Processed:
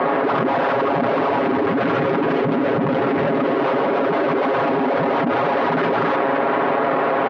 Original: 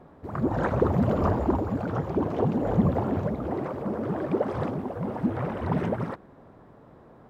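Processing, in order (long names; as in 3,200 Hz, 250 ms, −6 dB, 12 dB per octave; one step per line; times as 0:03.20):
brickwall limiter −21 dBFS, peak gain reduction 10.5 dB
soft clipping −28 dBFS, distortion −13 dB
0:01.39–0:03.56: parametric band 830 Hz −14.5 dB 1.3 octaves
dead-zone distortion −55.5 dBFS
mid-hump overdrive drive 36 dB, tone 2,200 Hz, clips at −21 dBFS
high-pass filter 250 Hz 12 dB per octave
high-frequency loss of the air 290 metres
comb filter 7.3 ms
envelope flattener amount 100%
level +7 dB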